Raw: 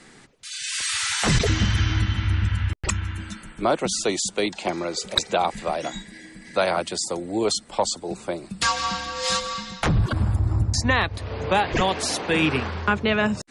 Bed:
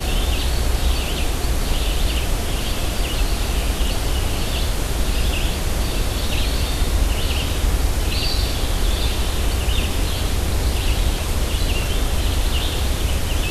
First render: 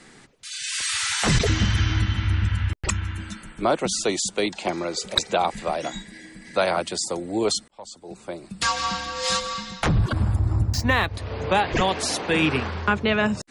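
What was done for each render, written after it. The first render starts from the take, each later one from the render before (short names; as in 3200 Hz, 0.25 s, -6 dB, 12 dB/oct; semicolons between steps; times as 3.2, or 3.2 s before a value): 7.68–8.81 fade in; 10.66–11.07 median filter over 5 samples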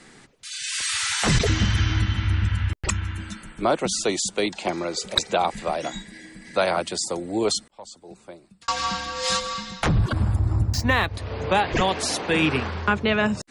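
7.72–8.68 fade out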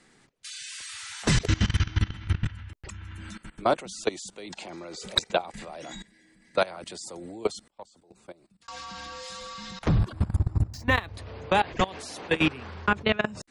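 level quantiser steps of 20 dB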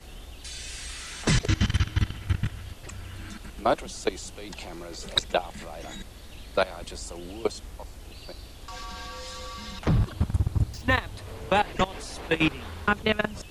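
add bed -23.5 dB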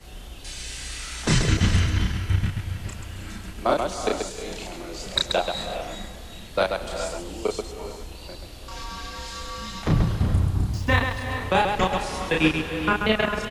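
on a send: loudspeakers at several distances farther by 11 m -2 dB, 46 m -5 dB; on the sum: non-linear reverb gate 0.45 s rising, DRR 7.5 dB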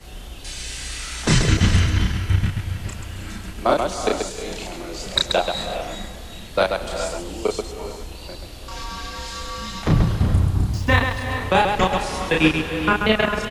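gain +3.5 dB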